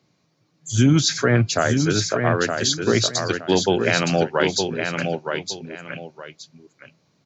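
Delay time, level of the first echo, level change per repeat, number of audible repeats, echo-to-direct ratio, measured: 917 ms, -5.5 dB, -11.5 dB, 2, -5.0 dB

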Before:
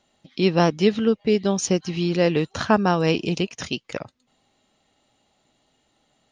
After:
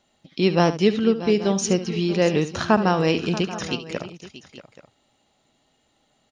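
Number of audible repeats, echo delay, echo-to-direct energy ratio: 3, 72 ms, -10.0 dB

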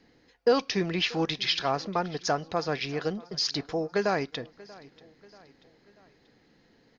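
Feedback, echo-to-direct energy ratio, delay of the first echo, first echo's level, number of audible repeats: 50%, -21.0 dB, 636 ms, -22.0 dB, 3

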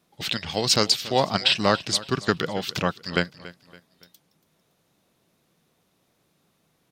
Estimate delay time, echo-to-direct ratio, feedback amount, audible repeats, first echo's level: 282 ms, -17.5 dB, 39%, 3, -18.0 dB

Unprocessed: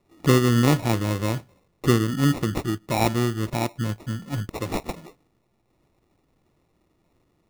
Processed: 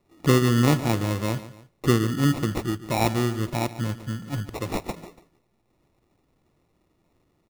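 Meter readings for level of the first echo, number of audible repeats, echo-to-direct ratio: -15.0 dB, 2, -14.5 dB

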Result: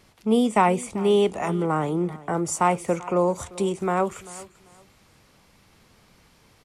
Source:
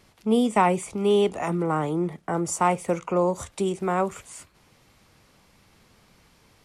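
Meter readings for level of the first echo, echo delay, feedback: -19.5 dB, 391 ms, 24%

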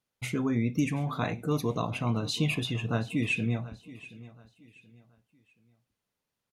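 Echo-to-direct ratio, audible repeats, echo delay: -17.5 dB, 2, 728 ms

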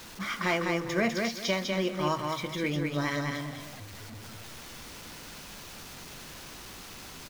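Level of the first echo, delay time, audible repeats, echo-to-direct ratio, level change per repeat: -3.5 dB, 201 ms, 2, -3.0 dB, -12.0 dB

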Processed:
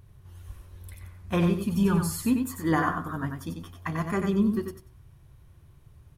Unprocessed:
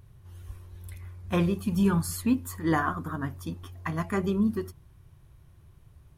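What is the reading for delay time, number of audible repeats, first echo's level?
93 ms, 2, -5.5 dB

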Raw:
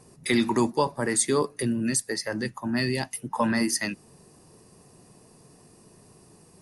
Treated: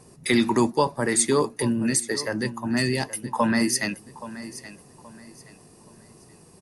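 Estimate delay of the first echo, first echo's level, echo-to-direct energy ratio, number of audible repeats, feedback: 825 ms, -15.5 dB, -15.0 dB, 2, 31%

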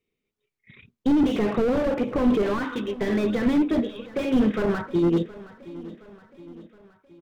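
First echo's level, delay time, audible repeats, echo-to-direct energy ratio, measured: -18.0 dB, 719 ms, 4, -16.5 dB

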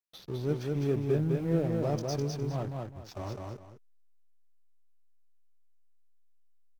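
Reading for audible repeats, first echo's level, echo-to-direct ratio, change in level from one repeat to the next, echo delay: 2, -3.0 dB, -2.5 dB, -11.5 dB, 206 ms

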